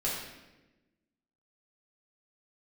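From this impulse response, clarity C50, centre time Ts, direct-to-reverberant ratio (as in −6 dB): 1.5 dB, 62 ms, −7.0 dB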